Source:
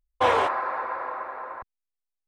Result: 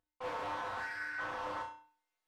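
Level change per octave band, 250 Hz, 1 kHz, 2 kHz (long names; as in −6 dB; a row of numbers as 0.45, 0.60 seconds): −10.0, −14.0, −6.5 decibels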